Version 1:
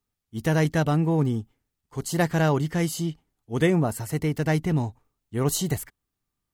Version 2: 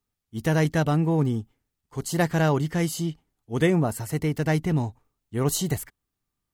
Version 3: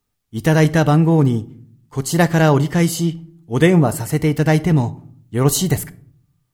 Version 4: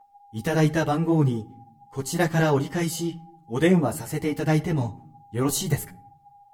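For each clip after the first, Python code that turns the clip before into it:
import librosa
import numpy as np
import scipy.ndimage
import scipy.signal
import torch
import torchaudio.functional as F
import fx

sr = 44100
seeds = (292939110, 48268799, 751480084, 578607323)

y1 = x
y2 = fx.room_shoebox(y1, sr, seeds[0], volume_m3=770.0, walls='furnished', distance_m=0.43)
y2 = y2 * librosa.db_to_amplitude(8.0)
y3 = y2 + 10.0 ** (-43.0 / 20.0) * np.sin(2.0 * np.pi * 810.0 * np.arange(len(y2)) / sr)
y3 = fx.ensemble(y3, sr)
y3 = y3 * librosa.db_to_amplitude(-4.0)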